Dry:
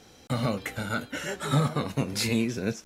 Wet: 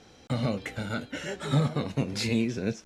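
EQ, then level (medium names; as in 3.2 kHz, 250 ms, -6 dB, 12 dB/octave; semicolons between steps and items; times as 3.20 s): dynamic bell 1.2 kHz, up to -6 dB, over -43 dBFS, Q 1.4; distance through air 61 m; 0.0 dB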